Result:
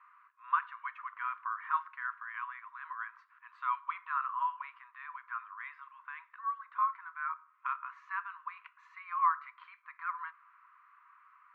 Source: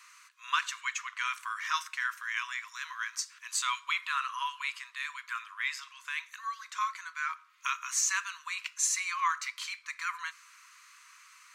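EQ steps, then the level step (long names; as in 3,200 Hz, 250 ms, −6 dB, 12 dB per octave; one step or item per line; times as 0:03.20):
resonant band-pass 1,100 Hz, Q 1.8
high-frequency loss of the air 460 metres
spectral tilt −4.5 dB per octave
+5.0 dB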